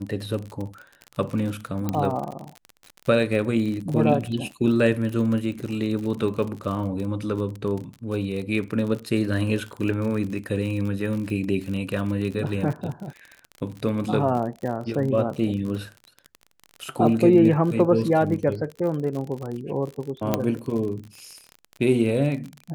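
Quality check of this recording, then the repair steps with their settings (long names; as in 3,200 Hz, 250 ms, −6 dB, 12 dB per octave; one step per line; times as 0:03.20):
surface crackle 42 per second −30 dBFS
0:01.89: click −12 dBFS
0:20.34: click −7 dBFS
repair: click removal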